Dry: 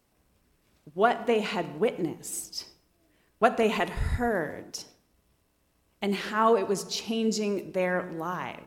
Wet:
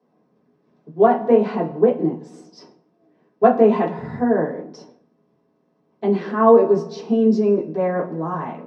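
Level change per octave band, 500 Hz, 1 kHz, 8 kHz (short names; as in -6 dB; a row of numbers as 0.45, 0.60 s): +10.5 dB, +7.0 dB, under -15 dB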